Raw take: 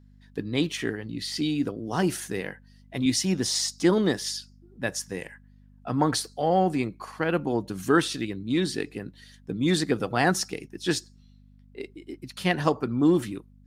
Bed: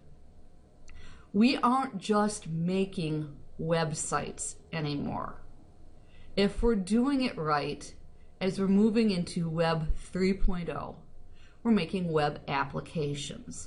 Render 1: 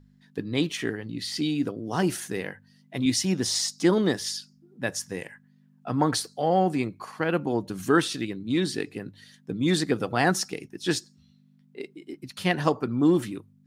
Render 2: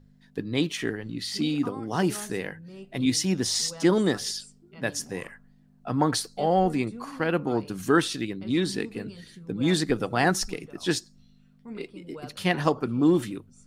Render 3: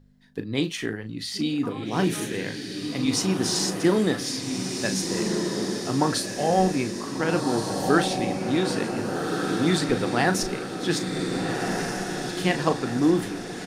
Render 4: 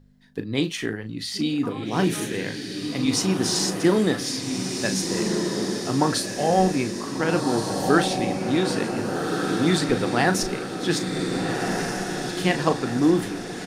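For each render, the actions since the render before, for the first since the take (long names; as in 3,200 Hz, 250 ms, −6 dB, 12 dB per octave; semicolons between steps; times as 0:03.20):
hum removal 50 Hz, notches 2
mix in bed −15 dB
double-tracking delay 37 ms −10 dB; feedback delay with all-pass diffusion 1,542 ms, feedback 50%, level −3.5 dB
level +1.5 dB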